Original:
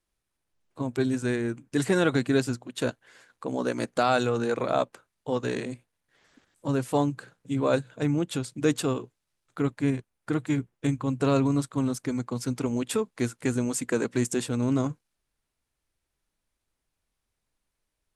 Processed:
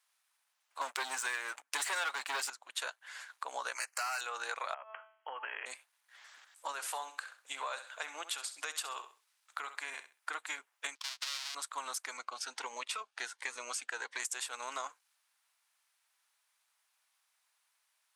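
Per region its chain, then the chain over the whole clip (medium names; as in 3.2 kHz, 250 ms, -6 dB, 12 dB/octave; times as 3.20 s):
0.81–2.50 s: peaking EQ 130 Hz -6 dB 0.41 oct + comb 7.1 ms, depth 33% + waveshaping leveller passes 3
3.75–4.21 s: tilt shelf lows -9 dB, about 800 Hz + hard clipper -24 dBFS + Butterworth band-stop 3.5 kHz, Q 2.4
4.74–5.66 s: de-hum 218.5 Hz, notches 38 + compression 10:1, threshold -33 dBFS + brick-wall FIR low-pass 3.3 kHz
6.72–10.30 s: bass shelf 220 Hz -7.5 dB + compression 3:1, threshold -28 dBFS + feedback delay 65 ms, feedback 23%, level -13 dB
10.95–11.55 s: square wave that keeps the level + band-pass filter 4.6 kHz, Q 1.8 + gate -50 dBFS, range -20 dB
12.17–14.20 s: distance through air 71 m + band-stop 7.3 kHz, Q 11 + Shepard-style phaser rising 1.4 Hz
whole clip: high-pass 860 Hz 24 dB/octave; compression 4:1, threshold -45 dBFS; trim +8 dB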